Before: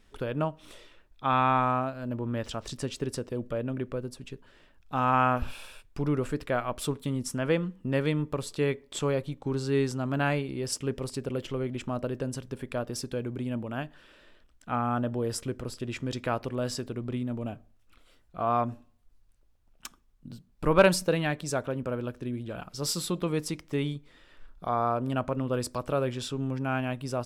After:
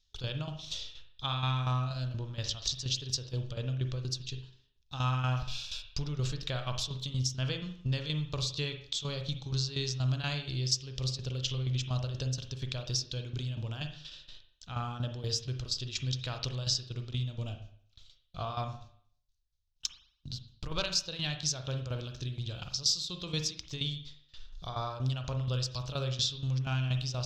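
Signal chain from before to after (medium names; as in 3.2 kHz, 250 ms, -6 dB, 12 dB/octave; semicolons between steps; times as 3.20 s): gate with hold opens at -45 dBFS; FFT filter 130 Hz 0 dB, 210 Hz -17 dB, 2.1 kHz -10 dB, 3.8 kHz +13 dB, 6.5 kHz +11 dB, 9.3 kHz -16 dB, 13 kHz -11 dB; compression 3:1, threshold -38 dBFS, peak gain reduction 15 dB; tremolo saw down 4.2 Hz, depth 75%; reverberation RT60 0.55 s, pre-delay 39 ms, DRR 6 dB; trim +8.5 dB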